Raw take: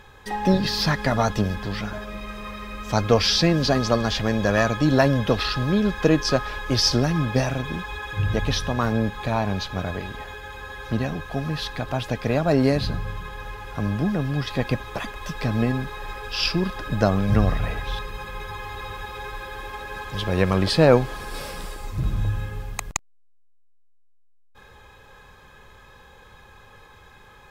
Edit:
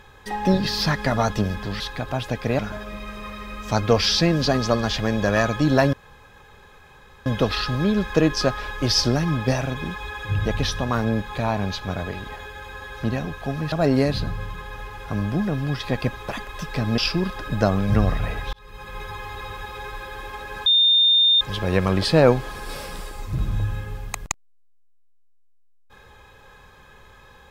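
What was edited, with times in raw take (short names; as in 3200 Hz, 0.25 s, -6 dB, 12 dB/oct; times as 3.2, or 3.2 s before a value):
5.14 insert room tone 1.33 s
11.6–12.39 move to 1.8
15.65–16.38 cut
17.93–18.39 fade in
20.06 add tone 3630 Hz -13 dBFS 0.75 s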